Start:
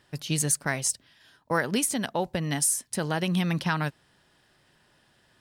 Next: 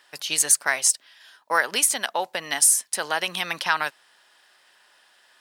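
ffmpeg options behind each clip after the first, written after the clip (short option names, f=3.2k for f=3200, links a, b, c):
-af "highpass=790,volume=7.5dB"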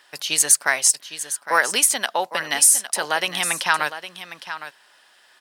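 -af "aecho=1:1:809:0.251,volume=3dB"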